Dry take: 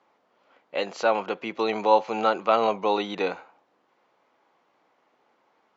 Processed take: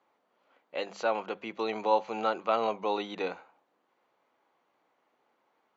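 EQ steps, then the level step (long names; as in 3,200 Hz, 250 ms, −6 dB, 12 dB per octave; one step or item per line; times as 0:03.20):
mains-hum notches 50/100/150/200 Hz
notch filter 5,200 Hz, Q 13
−6.5 dB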